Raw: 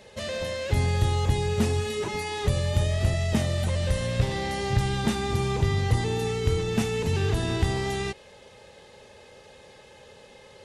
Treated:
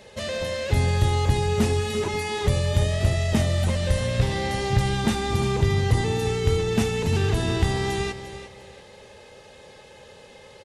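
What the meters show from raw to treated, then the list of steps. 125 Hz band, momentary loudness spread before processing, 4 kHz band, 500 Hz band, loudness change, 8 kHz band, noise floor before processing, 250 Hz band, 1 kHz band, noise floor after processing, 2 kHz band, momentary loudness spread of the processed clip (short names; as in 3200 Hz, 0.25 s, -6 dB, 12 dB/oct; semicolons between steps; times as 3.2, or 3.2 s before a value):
+2.5 dB, 5 LU, +3.0 dB, +3.0 dB, +2.5 dB, +3.0 dB, -51 dBFS, +3.0 dB, +3.0 dB, -48 dBFS, +3.0 dB, 6 LU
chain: feedback echo 0.348 s, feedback 28%, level -12 dB; gain +2.5 dB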